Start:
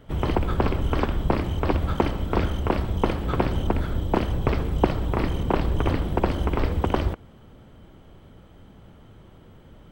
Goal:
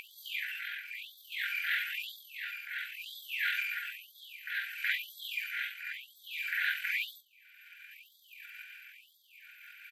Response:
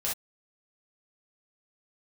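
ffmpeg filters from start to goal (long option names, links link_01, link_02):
-filter_complex "[0:a]asplit=2[link_01][link_02];[link_02]adelay=43,volume=-12.5dB[link_03];[link_01][link_03]amix=inputs=2:normalize=0,tremolo=f=0.59:d=0.67,equalizer=frequency=125:width_type=o:width=1:gain=12,equalizer=frequency=500:width_type=o:width=1:gain=-11,equalizer=frequency=1000:width_type=o:width=1:gain=5,equalizer=frequency=4000:width_type=o:width=1:gain=4,equalizer=frequency=8000:width_type=o:width=1:gain=-12[link_04];[1:a]atrim=start_sample=2205,atrim=end_sample=3528[link_05];[link_04][link_05]afir=irnorm=-1:irlink=0,afftfilt=real='re*(1-between(b*sr/4096,180,1800))':imag='im*(1-between(b*sr/4096,180,1800))':win_size=4096:overlap=0.75,acompressor=mode=upward:threshold=-23dB:ratio=2.5,asetrate=34006,aresample=44100,atempo=1.29684,afftfilt=real='re*gte(b*sr/1024,740*pow(3300/740,0.5+0.5*sin(2*PI*1*pts/sr)))':imag='im*gte(b*sr/1024,740*pow(3300/740,0.5+0.5*sin(2*PI*1*pts/sr)))':win_size=1024:overlap=0.75,volume=5dB"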